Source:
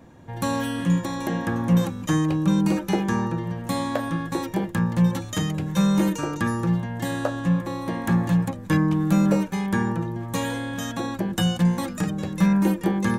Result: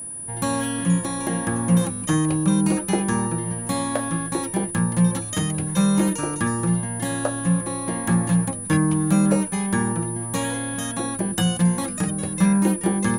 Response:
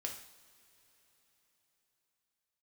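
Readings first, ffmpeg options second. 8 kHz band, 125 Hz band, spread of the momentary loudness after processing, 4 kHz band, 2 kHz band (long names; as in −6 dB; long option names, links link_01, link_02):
+12.5 dB, +1.0 dB, 6 LU, +1.0 dB, +1.0 dB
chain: -af "aeval=exprs='val(0)+0.0251*sin(2*PI*9800*n/s)':channel_layout=same,aeval=exprs='0.398*(cos(1*acos(clip(val(0)/0.398,-1,1)))-cos(1*PI/2))+0.0126*(cos(2*acos(clip(val(0)/0.398,-1,1)))-cos(2*PI/2))':channel_layout=same,volume=1dB"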